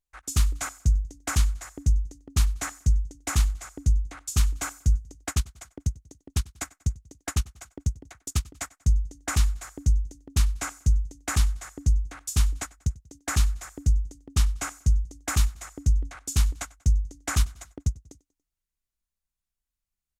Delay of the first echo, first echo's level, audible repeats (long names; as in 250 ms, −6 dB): 95 ms, −23.0 dB, 2